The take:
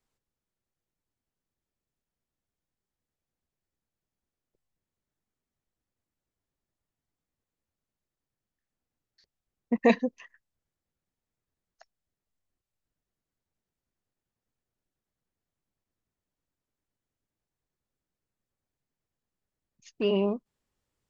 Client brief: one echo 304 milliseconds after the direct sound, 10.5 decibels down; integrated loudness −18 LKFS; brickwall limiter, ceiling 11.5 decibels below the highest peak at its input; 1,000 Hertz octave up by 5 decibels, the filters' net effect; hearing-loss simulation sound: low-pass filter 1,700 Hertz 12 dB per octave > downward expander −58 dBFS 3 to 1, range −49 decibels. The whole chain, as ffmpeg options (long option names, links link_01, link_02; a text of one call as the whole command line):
ffmpeg -i in.wav -af "equalizer=frequency=1000:width_type=o:gain=7.5,alimiter=limit=-17.5dB:level=0:latency=1,lowpass=1700,aecho=1:1:304:0.299,agate=range=-49dB:threshold=-58dB:ratio=3,volume=13dB" out.wav